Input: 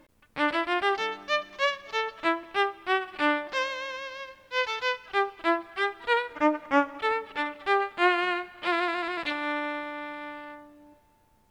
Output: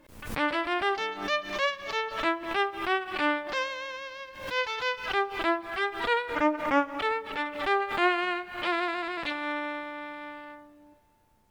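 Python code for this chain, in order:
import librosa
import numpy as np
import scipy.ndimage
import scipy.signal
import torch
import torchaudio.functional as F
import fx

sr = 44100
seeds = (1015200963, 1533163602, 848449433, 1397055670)

y = fx.pre_swell(x, sr, db_per_s=84.0)
y = F.gain(torch.from_numpy(y), -2.0).numpy()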